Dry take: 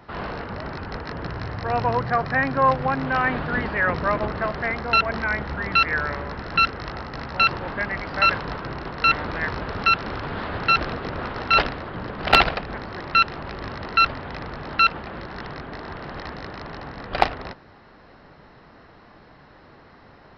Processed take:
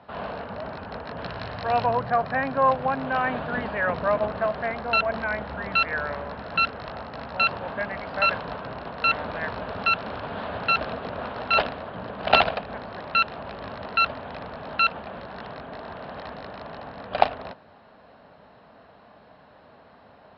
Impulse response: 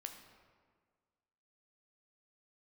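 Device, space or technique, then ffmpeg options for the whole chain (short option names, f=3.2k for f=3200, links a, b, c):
guitar cabinet: -filter_complex "[0:a]asettb=1/sr,asplit=3[a][b][c];[a]atrim=end=1.184[d];[b]atrim=start=1.18:end=1.86,asetpts=PTS-STARTPTS,afade=t=in:d=0.004:c=qsin,afade=t=out:st=0.676:d=0.004:c=qsin,equalizer=f=4.2k:w=0.47:g=7.5[e];[c]atrim=start=1.856[f];[d][e]acrossfade=d=0.004:c1=hsin:c2=qsin[g];[g][f]acrossfade=d=0.004:c1=qsin:c2=hsin,highpass=89,equalizer=f=93:t=q:w=4:g=-4,equalizer=f=140:t=q:w=4:g=-7,equalizer=f=340:t=q:w=4:g=-10,equalizer=f=640:t=q:w=4:g=6,equalizer=f=1.3k:t=q:w=4:g=-3,equalizer=f=2k:t=q:w=4:g=-7,lowpass=f=4.1k:w=0.5412,lowpass=f=4.1k:w=1.3066,volume=-1.5dB"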